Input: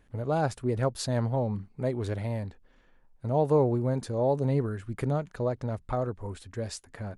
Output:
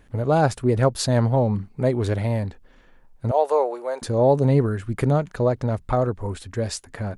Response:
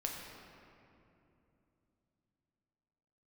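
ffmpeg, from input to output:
-filter_complex "[0:a]asettb=1/sr,asplit=3[a][b][c];[a]atrim=end=3.314[d];[b]atrim=start=3.31:end=4.02,asetpts=PTS-STARTPTS,afade=t=in:d=0.004:c=qsin,afade=t=out:st=0.706:d=0.004:c=qsin,highpass=f=520:w=0.5412,highpass=f=520:w=1.3066[e];[c]atrim=start=4.016[f];[d][e]acrossfade=d=0.004:c1=hsin:c2=qsin[g];[g][f]acrossfade=d=0.004:c1=qsin:c2=hsin,volume=8.5dB"

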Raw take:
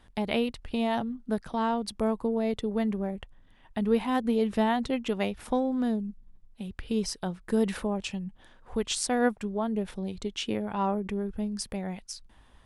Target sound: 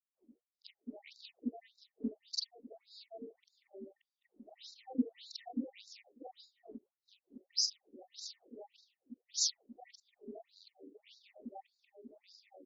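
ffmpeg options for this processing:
-filter_complex "[0:a]afftfilt=real='re':imag='-im':win_size=4096:overlap=0.75,afftfilt=real='re*(1-between(b*sr/4096,830,1800))':imag='im*(1-between(b*sr/4096,830,1800))':win_size=4096:overlap=0.75,aemphasis=mode=reproduction:type=50fm,agate=range=-33dB:threshold=-47dB:ratio=3:detection=peak,firequalizer=gain_entry='entry(100,0);entry(210,15);entry(360,-16);entry(1200,-17);entry(3100,-10);entry(4700,12)':delay=0.05:min_phase=1,aexciter=amount=4.2:drive=1.5:freq=9.1k,acrossover=split=160|2300[a][b][c];[c]adelay=510[d];[b]adelay=740[e];[a][e][d]amix=inputs=3:normalize=0,afftfilt=real='re*between(b*sr/1024,360*pow(5300/360,0.5+0.5*sin(2*PI*1.7*pts/sr))/1.41,360*pow(5300/360,0.5+0.5*sin(2*PI*1.7*pts/sr))*1.41)':imag='im*between(b*sr/1024,360*pow(5300/360,0.5+0.5*sin(2*PI*1.7*pts/sr))/1.41,360*pow(5300/360,0.5+0.5*sin(2*PI*1.7*pts/sr))*1.41)':win_size=1024:overlap=0.75,volume=5.5dB"

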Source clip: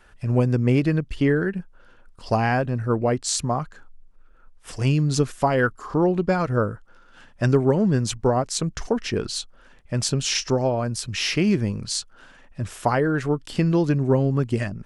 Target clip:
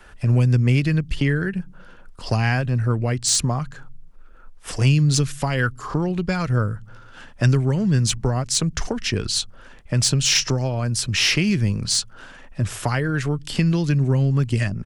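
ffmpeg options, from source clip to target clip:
-filter_complex "[0:a]acrossover=split=160|1800[a][b][c];[a]aecho=1:1:113|226|339|452:0.0891|0.0499|0.0279|0.0157[d];[b]acompressor=threshold=-33dB:ratio=6[e];[c]asoftclip=type=tanh:threshold=-15.5dB[f];[d][e][f]amix=inputs=3:normalize=0,volume=7dB"

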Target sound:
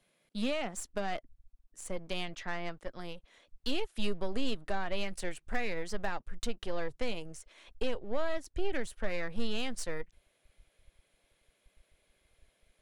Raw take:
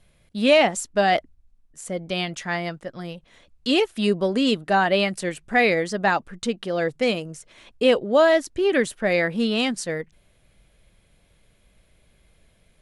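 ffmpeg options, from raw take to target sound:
-filter_complex "[0:a]asettb=1/sr,asplit=3[a][b][c];[a]atrim=end=2.234[d];[b]atrim=start=2.23:end=2.77,asetpts=PTS-STARTPTS,afade=t=in:d=0.004:c=qsin,afade=t=out:st=0.536:d=0.004:c=qsin,lowpass=4.6k[e];[c]atrim=start=2.766[f];[d][e]acrossfade=d=0.004:c1=hsin:c2=qsin[g];[g][f]acrossfade=d=0.004:c1=qsin:c2=hsin,acrossover=split=190[h][i];[h]aeval=exprs='sgn(val(0))*max(abs(val(0))-0.00178,0)':c=same[j];[i]acompressor=threshold=-26dB:ratio=5[k];[j][k]amix=inputs=2:normalize=0,aeval=exprs='0.188*(cos(1*acos(clip(val(0)/0.188,-1,1)))-cos(1*PI/2))+0.0133*(cos(6*acos(clip(val(0)/0.188,-1,1)))-cos(6*PI/2))':c=same,asubboost=boost=11:cutoff=54,volume=-7.5dB"

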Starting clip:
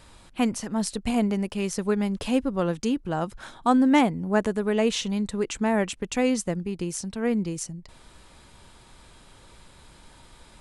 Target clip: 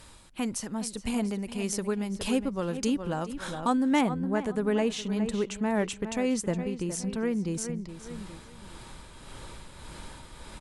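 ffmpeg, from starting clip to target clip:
-filter_complex "[0:a]aemphasis=mode=production:type=cd,bandreject=f=710:w=15,asplit=2[a][b];[b]adelay=414,lowpass=f=4k:p=1,volume=-12dB,asplit=2[c][d];[d]adelay=414,lowpass=f=4k:p=1,volume=0.32,asplit=2[e][f];[f]adelay=414,lowpass=f=4k:p=1,volume=0.32[g];[a][c][e][g]amix=inputs=4:normalize=0,dynaudnorm=f=370:g=9:m=10dB,tremolo=f=1.7:d=0.44,acompressor=threshold=-35dB:ratio=1.5,asetnsamples=n=441:p=0,asendcmd='4.01 highshelf g -10',highshelf=f=3.5k:g=-2.5"

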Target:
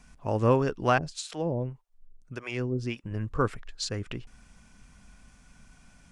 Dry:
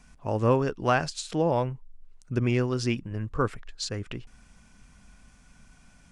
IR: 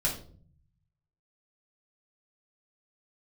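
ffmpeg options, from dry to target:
-filter_complex "[0:a]asettb=1/sr,asplit=3[a][b][c];[a]atrim=end=0.984[d];[b]atrim=start=0.98:end=3.04,asetpts=PTS-STARTPTS,afade=t=in:d=0.004:c=qsin,afade=t=out:st=2.056:d=0.004:c=qsin,acrossover=split=530[e][f];[e]aeval=exprs='val(0)*(1-1/2+1/2*cos(2*PI*1.7*n/s))':c=same[g];[f]aeval=exprs='val(0)*(1-1/2-1/2*cos(2*PI*1.7*n/s))':c=same[h];[g][h]amix=inputs=2:normalize=0[i];[c]atrim=start=3.036[j];[d][i]acrossfade=d=0.004:c1=hsin:c2=qsin[k];[k][j]acrossfade=d=0.004:c1=qsin:c2=hsin"

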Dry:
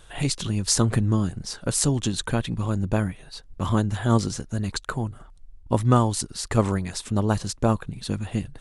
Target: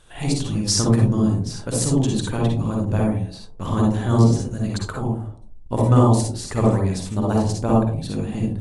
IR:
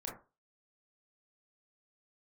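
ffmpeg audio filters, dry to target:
-filter_complex "[0:a]asettb=1/sr,asplit=3[a][b][c];[a]atrim=end=0.614[d];[b]atrim=start=0.61:end=1.13,asetpts=PTS-STARTPTS,afade=t=in:d=0.004:c=qsin,afade=t=out:st=0.516:d=0.004:c=qsin,equalizer=f=5.4k:t=o:w=0.27:g=8.5[e];[c]atrim=start=1.126[f];[d][e]acrossfade=d=0.004:c1=hsin:c2=qsin[g];[g][f]acrossfade=d=0.004:c1=qsin:c2=hsin[h];[1:a]atrim=start_sample=2205,asetrate=22932,aresample=44100[i];[h][i]afir=irnorm=-1:irlink=0,volume=-1dB"

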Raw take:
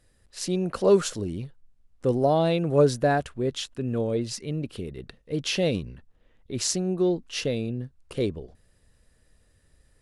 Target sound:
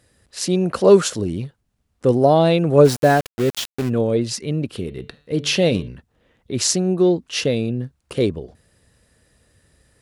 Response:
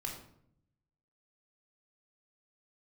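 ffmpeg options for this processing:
-filter_complex "[0:a]highpass=73,asplit=3[a][b][c];[a]afade=t=out:st=2.84:d=0.02[d];[b]aeval=exprs='val(0)*gte(abs(val(0)),0.0266)':c=same,afade=t=in:st=2.84:d=0.02,afade=t=out:st=3.88:d=0.02[e];[c]afade=t=in:st=3.88:d=0.02[f];[d][e][f]amix=inputs=3:normalize=0,asettb=1/sr,asplit=3[g][h][i];[g]atrim=end=4.724[j];[h]atrim=start=4.72:end=5.88,asetpts=PTS-STARTPTS,afade=t=in:d=0.004:c=qsin,afade=t=out:st=1.156:d=0.004:c=qsin,bandreject=f=146.1:t=h:w=4,bandreject=f=292.2:t=h:w=4,bandreject=f=438.3:t=h:w=4,bandreject=f=584.4:t=h:w=4,bandreject=f=730.5:t=h:w=4,bandreject=f=876.6:t=h:w=4,bandreject=f=1.0227k:t=h:w=4,bandreject=f=1.1688k:t=h:w=4,bandreject=f=1.3149k:t=h:w=4,bandreject=f=1.461k:t=h:w=4,bandreject=f=1.6071k:t=h:w=4,bandreject=f=1.7532k:t=h:w=4,bandreject=f=1.8993k:t=h:w=4,bandreject=f=2.0454k:t=h:w=4,bandreject=f=2.1915k:t=h:w=4,bandreject=f=2.3376k:t=h:w=4,bandreject=f=2.4837k:t=h:w=4,bandreject=f=2.6298k:t=h:w=4,bandreject=f=2.7759k:t=h:w=4,bandreject=f=2.922k:t=h:w=4,bandreject=f=3.0681k:t=h:w=4,bandreject=f=3.2142k:t=h:w=4,bandreject=f=3.3603k:t=h:w=4,bandreject=f=3.5064k:t=h:w=4,bandreject=f=3.6525k:t=h:w=4,bandreject=f=3.7986k:t=h:w=4,bandreject=f=3.9447k:t=h:w=4,bandreject=f=4.0908k:t=h:w=4,bandreject=f=4.2369k:t=h:w=4,bandreject=f=4.383k:t=h:w=4[k];[i]atrim=start=5.876[l];[j][k]acrossfade=d=0.004:c1=hsin:c2=qsin[m];[m][l]acrossfade=d=0.004:c1=qsin:c2=hsin,volume=7.5dB"

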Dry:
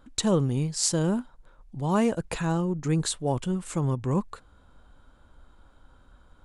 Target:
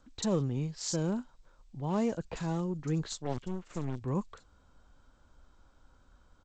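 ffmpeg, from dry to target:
-filter_complex "[0:a]asplit=3[a][b][c];[a]afade=t=out:st=3.11:d=0.02[d];[b]aeval=exprs='0.178*(cos(1*acos(clip(val(0)/0.178,-1,1)))-cos(1*PI/2))+0.0316*(cos(3*acos(clip(val(0)/0.178,-1,1)))-cos(3*PI/2))+0.00501*(cos(5*acos(clip(val(0)/0.178,-1,1)))-cos(5*PI/2))+0.0178*(cos(8*acos(clip(val(0)/0.178,-1,1)))-cos(8*PI/2))':c=same,afade=t=in:st=3.11:d=0.02,afade=t=out:st=4:d=0.02[e];[c]afade=t=in:st=4:d=0.02[f];[d][e][f]amix=inputs=3:normalize=0,acrossover=split=360|1200|2800[g][h][i][j];[i]aeval=exprs='(mod(79.4*val(0)+1,2)-1)/79.4':c=same[k];[g][h][k][j]amix=inputs=4:normalize=0,acrossover=split=3800[l][m];[m]adelay=40[n];[l][n]amix=inputs=2:normalize=0,volume=-6.5dB" -ar 16000 -c:a g722

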